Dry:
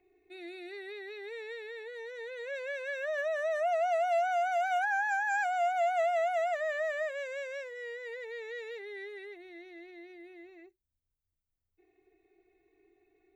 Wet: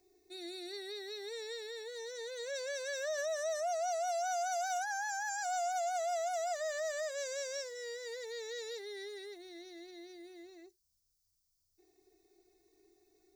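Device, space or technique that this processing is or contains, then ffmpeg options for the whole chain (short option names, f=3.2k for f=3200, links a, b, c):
over-bright horn tweeter: -af "highshelf=f=3.6k:t=q:w=3:g=13,alimiter=level_in=4.5dB:limit=-24dB:level=0:latency=1:release=118,volume=-4.5dB,volume=-1dB"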